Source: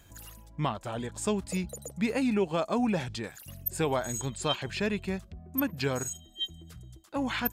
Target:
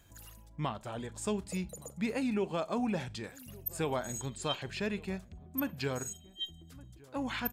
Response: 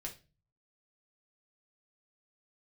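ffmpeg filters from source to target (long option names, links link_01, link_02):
-filter_complex "[0:a]asplit=2[link_01][link_02];[link_02]adelay=1166,volume=-22dB,highshelf=frequency=4000:gain=-26.2[link_03];[link_01][link_03]amix=inputs=2:normalize=0,asplit=2[link_04][link_05];[1:a]atrim=start_sample=2205,asetrate=57330,aresample=44100,adelay=38[link_06];[link_05][link_06]afir=irnorm=-1:irlink=0,volume=-14.5dB[link_07];[link_04][link_07]amix=inputs=2:normalize=0,volume=-5dB"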